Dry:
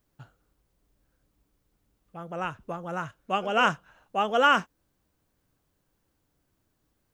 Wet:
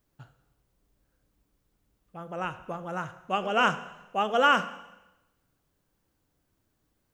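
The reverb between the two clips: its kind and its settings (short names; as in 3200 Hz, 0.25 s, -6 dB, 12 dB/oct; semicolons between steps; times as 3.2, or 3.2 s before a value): Schroeder reverb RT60 0.98 s, combs from 33 ms, DRR 12.5 dB; gain -1 dB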